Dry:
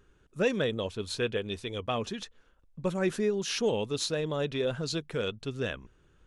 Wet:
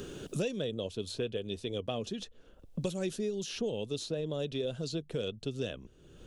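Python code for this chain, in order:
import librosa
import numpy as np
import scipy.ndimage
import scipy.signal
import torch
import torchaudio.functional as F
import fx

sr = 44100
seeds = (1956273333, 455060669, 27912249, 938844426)

y = fx.band_shelf(x, sr, hz=1400.0, db=-10.5, octaves=1.7)
y = fx.band_squash(y, sr, depth_pct=100)
y = y * librosa.db_to_amplitude(-4.5)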